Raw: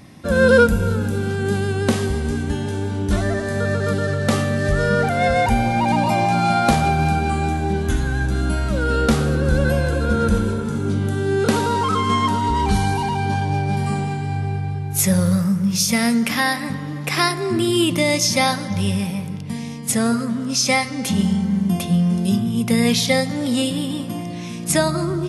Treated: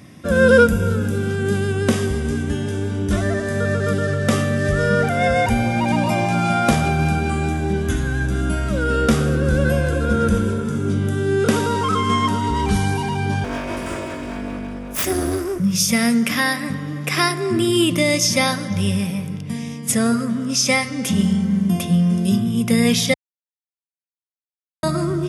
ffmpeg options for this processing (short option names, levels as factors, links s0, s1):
-filter_complex "[0:a]asettb=1/sr,asplit=3[s0][s1][s2];[s0]atrim=end=13.444[s3];[s1]atrim=start=13.44:end=15.6,asetpts=PTS-STARTPTS,afade=t=in:d=0.004:c=qsin,afade=t=out:st=2.156:d=0.004:c=qsin,aeval=exprs='abs(val(0))':c=same[s4];[s2]atrim=start=15.596[s5];[s3][s4]acrossfade=d=0.004:c1=hsin:c2=qsin[s6];[s6][s5]acrossfade=d=0.004:c1=qsin:c2=hsin,asplit=3[s7][s8][s9];[s7]atrim=end=23.14,asetpts=PTS-STARTPTS,afade=t=out:st=23.136:d=0.004:c=hsin[s10];[s8]atrim=start=23.14:end=24.83,asetpts=PTS-STARTPTS,volume=0[s11];[s9]atrim=start=24.83,asetpts=PTS-STARTPTS,afade=t=in:d=0.004:c=hsin[s12];[s10][s11][s12]concat=n=3:v=0:a=1,highpass=60,equalizer=f=850:w=6:g=-10,bandreject=f=4200:w=7.3,volume=1.12"